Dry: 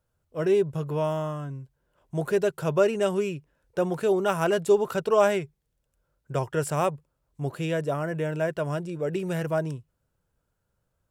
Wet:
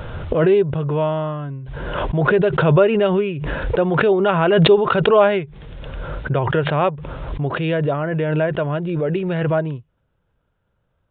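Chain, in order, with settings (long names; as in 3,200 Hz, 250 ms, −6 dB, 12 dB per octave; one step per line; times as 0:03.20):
downsampling to 8,000 Hz
background raised ahead of every attack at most 27 dB per second
level +6.5 dB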